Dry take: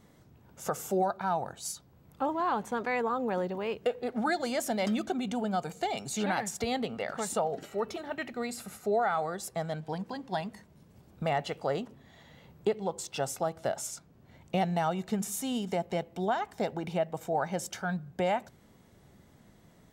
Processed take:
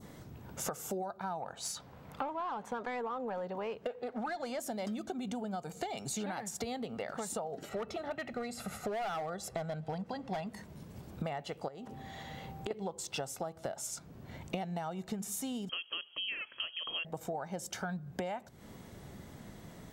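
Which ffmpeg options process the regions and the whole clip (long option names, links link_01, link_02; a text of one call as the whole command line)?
ffmpeg -i in.wav -filter_complex "[0:a]asettb=1/sr,asplit=3[link_01][link_02][link_03];[link_01]atrim=end=1.404[link_04];[link_02]atrim=start=1.4:end=4.59,asetpts=PTS-STARTPTS,afade=type=in:duration=0.004:curve=qsin,afade=type=out:start_time=3.186:duration=0.004:curve=qsin,equalizer=frequency=350:width=6:gain=-8.5,asplit=2[link_05][link_06];[link_06]highpass=frequency=720:poles=1,volume=12dB,asoftclip=type=tanh:threshold=-19dB[link_07];[link_05][link_07]amix=inputs=2:normalize=0,lowpass=frequency=2100:poles=1,volume=-6dB[link_08];[link_03]atrim=start=4.586[link_09];[link_04][link_08]acrossfade=duration=0.004:curve1=hsin:curve2=qsin[link_10];[link_10][link_09]acrossfade=duration=0.004:curve1=qsin:curve2=hsin,asettb=1/sr,asplit=3[link_11][link_12][link_13];[link_11]atrim=end=7.694[link_14];[link_12]atrim=start=7.69:end=10.47,asetpts=PTS-STARTPTS,afade=type=in:duration=0.004:curve=qsin,afade=type=out:start_time=2.776:duration=0.004:curve=qsin,lowpass=frequency=4000:poles=1,aecho=1:1:1.5:0.38,atrim=end_sample=122598,volume=28dB,asoftclip=hard,volume=-28dB[link_15];[link_13]atrim=start=10.466[link_16];[link_14][link_15]acrossfade=duration=0.004:curve1=hsin:curve2=qsin[link_17];[link_17][link_16]acrossfade=duration=0.004:curve1=qsin:curve2=hsin,asettb=1/sr,asplit=3[link_18][link_19][link_20];[link_18]atrim=end=11.684[link_21];[link_19]atrim=start=11.68:end=12.71,asetpts=PTS-STARTPTS,afade=type=in:duration=0.004:curve=qsin,afade=type=out:start_time=1.026:duration=0.004:curve=qsin,acompressor=threshold=-40dB:ratio=10:attack=3.2:release=140:knee=1:detection=peak,aeval=exprs='val(0)+0.00126*sin(2*PI*780*n/s)':channel_layout=same[link_22];[link_20]atrim=start=12.706[link_23];[link_21][link_22]acrossfade=duration=0.004:curve1=hsin:curve2=qsin[link_24];[link_24][link_23]acrossfade=duration=0.004:curve1=qsin:curve2=hsin,asettb=1/sr,asplit=3[link_25][link_26][link_27];[link_25]atrim=end=15.694[link_28];[link_26]atrim=start=15.69:end=17.05,asetpts=PTS-STARTPTS,afade=type=in:duration=0.004:curve=qsin,afade=type=out:start_time=1.356:duration=0.004:curve=qsin,lowpass=frequency=2900:width_type=q:width=0.5098,lowpass=frequency=2900:width_type=q:width=0.6013,lowpass=frequency=2900:width_type=q:width=0.9,lowpass=frequency=2900:width_type=q:width=2.563,afreqshift=-3400,tiltshelf=frequency=1100:gain=3.5[link_29];[link_27]atrim=start=17.046[link_30];[link_28][link_29]acrossfade=duration=0.004:curve1=hsin:curve2=qsin[link_31];[link_31][link_30]acrossfade=duration=0.004:curve1=qsin:curve2=hsin,adynamicequalizer=threshold=0.00447:dfrequency=2300:dqfactor=0.92:tfrequency=2300:tqfactor=0.92:attack=5:release=100:ratio=0.375:range=2.5:mode=cutabove:tftype=bell,acompressor=threshold=-44dB:ratio=10,volume=8.5dB" out.wav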